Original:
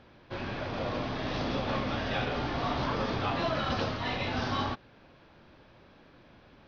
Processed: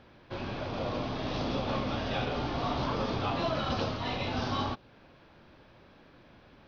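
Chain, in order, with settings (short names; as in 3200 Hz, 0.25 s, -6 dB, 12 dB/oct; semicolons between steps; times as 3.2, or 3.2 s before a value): dynamic EQ 1800 Hz, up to -6 dB, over -53 dBFS, Q 2.2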